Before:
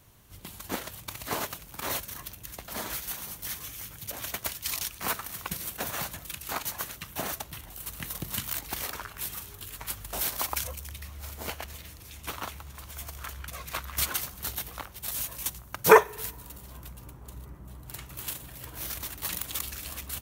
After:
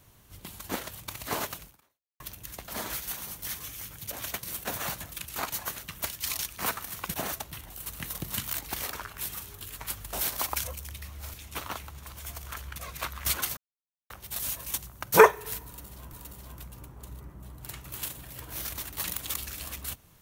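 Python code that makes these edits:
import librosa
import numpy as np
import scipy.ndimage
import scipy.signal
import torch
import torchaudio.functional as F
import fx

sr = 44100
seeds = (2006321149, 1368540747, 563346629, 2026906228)

y = fx.edit(x, sr, fx.fade_out_span(start_s=1.66, length_s=0.54, curve='exp'),
    fx.move(start_s=4.43, length_s=1.13, to_s=7.14),
    fx.cut(start_s=11.34, length_s=0.72),
    fx.silence(start_s=14.29, length_s=0.53),
    fx.repeat(start_s=16.38, length_s=0.47, count=2), tone=tone)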